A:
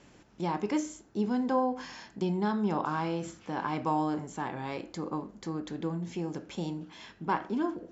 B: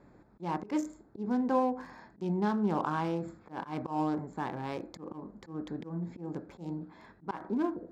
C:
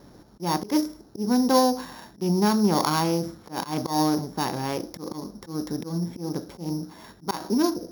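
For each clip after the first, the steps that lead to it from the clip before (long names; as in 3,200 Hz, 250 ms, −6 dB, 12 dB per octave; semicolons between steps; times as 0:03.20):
adaptive Wiener filter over 15 samples; volume swells 146 ms
samples sorted by size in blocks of 8 samples; level +8.5 dB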